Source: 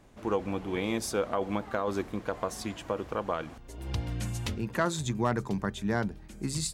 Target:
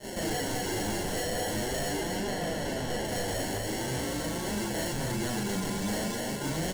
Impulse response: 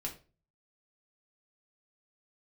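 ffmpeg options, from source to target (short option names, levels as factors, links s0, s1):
-filter_complex "[0:a]bandreject=f=50:t=h:w=6,bandreject=f=100:t=h:w=6,bandreject=f=150:t=h:w=6,bandreject=f=200:t=h:w=6,asplit=2[s0][s1];[s1]highpass=f=720:p=1,volume=63.1,asoftclip=type=tanh:threshold=0.188[s2];[s0][s2]amix=inputs=2:normalize=0,lowpass=f=6700:p=1,volume=0.501,acrusher=samples=36:mix=1:aa=0.000001,asettb=1/sr,asplit=3[s3][s4][s5];[s3]atrim=end=1.964[s6];[s4]atrim=start=1.96:end=3.05,asetpts=PTS-STARTPTS,afade=t=in:d=0.004:c=qsin,afade=t=out:st=1.086:d=0.004:c=qsin,highshelf=f=5200:g=-8.5[s7];[s5]atrim=start=3.046[s8];[s6][s7]acrossfade=d=0.004:c1=hsin:c2=qsin[s9];[s9][s8]acrossfade=d=0.004:c1=qsin:c2=hsin,aecho=1:1:244:0.501,acompressor=threshold=0.0355:ratio=4,equalizer=f=8000:t=o:w=1.7:g=10,asplit=2[s10][s11];[s11]adelay=38,volume=0.75[s12];[s10][s12]amix=inputs=2:normalize=0,agate=range=0.0224:threshold=0.0282:ratio=3:detection=peak,flanger=delay=4.8:depth=6.3:regen=48:speed=0.44:shape=triangular,volume=21.1,asoftclip=hard,volume=0.0473"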